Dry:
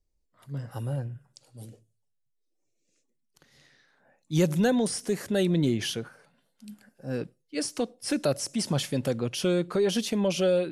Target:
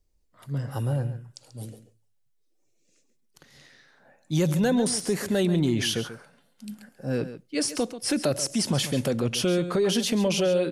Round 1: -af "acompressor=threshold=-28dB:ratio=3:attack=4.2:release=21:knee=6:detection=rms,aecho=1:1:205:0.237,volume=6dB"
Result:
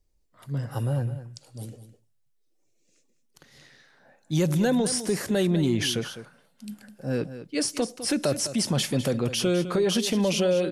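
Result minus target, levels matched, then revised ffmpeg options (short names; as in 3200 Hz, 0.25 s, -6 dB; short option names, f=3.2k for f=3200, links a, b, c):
echo 68 ms late
-af "acompressor=threshold=-28dB:ratio=3:attack=4.2:release=21:knee=6:detection=rms,aecho=1:1:137:0.237,volume=6dB"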